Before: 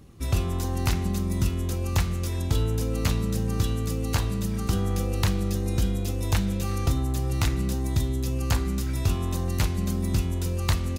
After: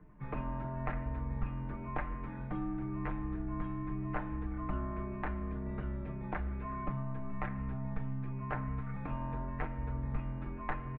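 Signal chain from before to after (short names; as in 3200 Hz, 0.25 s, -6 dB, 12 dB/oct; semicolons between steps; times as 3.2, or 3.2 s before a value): comb 6.8 ms, depth 71%; vocal rider 0.5 s; mistuned SSB -130 Hz 150–2100 Hz; gain -6.5 dB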